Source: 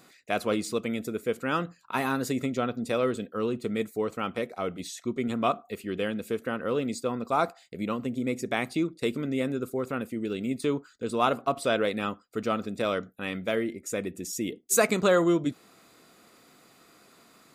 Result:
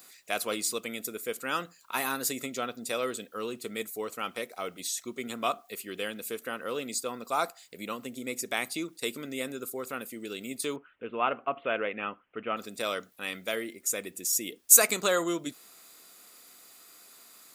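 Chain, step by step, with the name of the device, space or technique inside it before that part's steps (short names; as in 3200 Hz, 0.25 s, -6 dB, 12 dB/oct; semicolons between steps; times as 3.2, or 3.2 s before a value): turntable without a phono preamp (RIAA curve recording; white noise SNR 38 dB); 10.76–12.57 steep low-pass 3000 Hz 72 dB/oct; gain -3 dB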